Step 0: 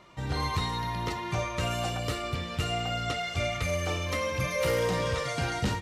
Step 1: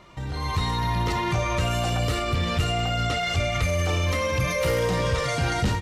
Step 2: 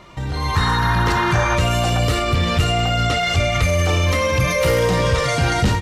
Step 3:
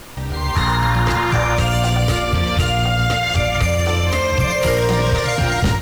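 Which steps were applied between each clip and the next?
peak limiter -32 dBFS, peak gain reduction 11 dB; bass shelf 84 Hz +9 dB; level rider gain up to 10 dB; trim +3.5 dB
painted sound noise, 0.55–1.56 s, 800–1900 Hz -31 dBFS; trim +6.5 dB
added noise pink -38 dBFS; on a send at -14 dB: reverberation RT60 0.65 s, pre-delay 108 ms

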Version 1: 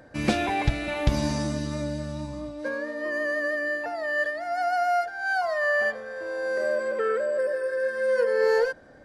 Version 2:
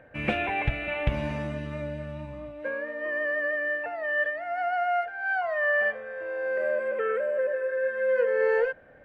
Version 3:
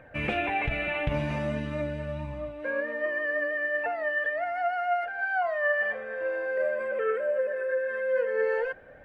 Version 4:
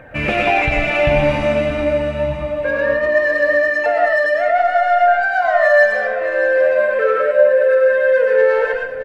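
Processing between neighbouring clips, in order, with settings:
FFT filter 150 Hz 0 dB, 310 Hz -5 dB, 500 Hz +3 dB, 1 kHz -1 dB, 2.7 kHz +7 dB, 4.8 kHz -21 dB, 9.6 kHz -16 dB; trim -3.5 dB
in parallel at -2 dB: compressor with a negative ratio -32 dBFS, ratio -1; on the sum: flange 0.44 Hz, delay 0.8 ms, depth 6.1 ms, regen +57%
in parallel at -6.5 dB: saturation -29 dBFS, distortion -11 dB; on the sum: feedback delay 618 ms, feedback 26%, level -12 dB; reverberation RT60 0.35 s, pre-delay 70 ms, DRR 0 dB; trim +7.5 dB

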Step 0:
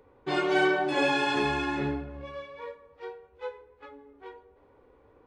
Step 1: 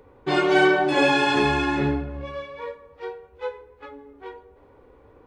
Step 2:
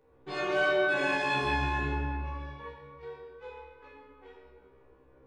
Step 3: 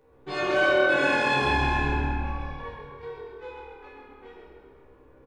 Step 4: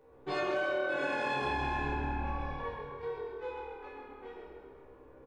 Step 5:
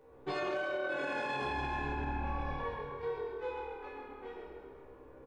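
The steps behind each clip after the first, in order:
bass shelf 180 Hz +3.5 dB; trim +6 dB
feedback comb 66 Hz, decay 0.43 s, harmonics all, mix 100%; reverberation RT60 2.0 s, pre-delay 7 ms, DRR -2 dB; trim -3 dB
frequency-shifting echo 132 ms, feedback 46%, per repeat -39 Hz, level -7 dB; trim +4.5 dB
peaking EQ 630 Hz +5 dB 2.4 oct; compression 6:1, threshold -26 dBFS, peak gain reduction 12.5 dB; trim -4 dB
peak limiter -28.5 dBFS, peak gain reduction 7 dB; trim +1 dB

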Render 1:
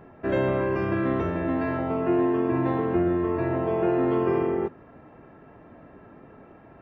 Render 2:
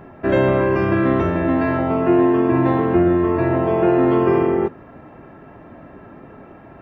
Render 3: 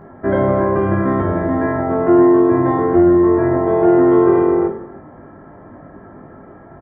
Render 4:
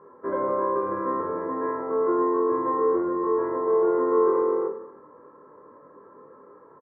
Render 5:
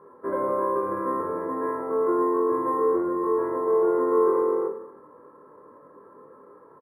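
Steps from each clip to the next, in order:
band-stop 460 Hz, Q 14; trim +8 dB
Savitzky-Golay filter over 41 samples; on a send: reverse bouncing-ball echo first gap 20 ms, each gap 1.6×, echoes 5
two resonant band-passes 710 Hz, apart 1.1 oct; doubling 27 ms -9 dB
decimation joined by straight lines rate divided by 4×

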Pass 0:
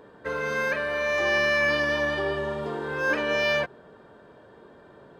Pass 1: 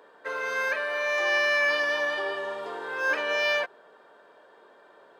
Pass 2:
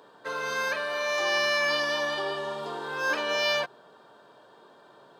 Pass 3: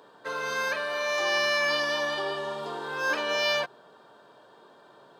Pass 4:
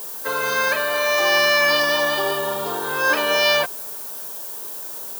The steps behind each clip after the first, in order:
high-pass 570 Hz 12 dB/octave
graphic EQ 125/500/2000/4000 Hz +11/-6/-10/+4 dB; trim +4.5 dB
no audible change
added noise violet -41 dBFS; trim +8.5 dB

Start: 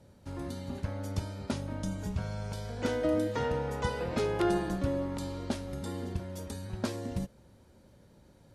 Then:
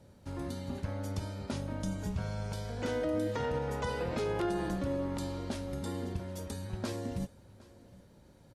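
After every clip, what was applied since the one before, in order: peak limiter -24.5 dBFS, peak gain reduction 7.5 dB; delay 763 ms -22 dB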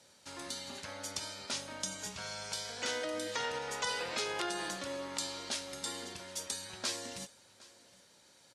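frequency weighting ITU-R 468

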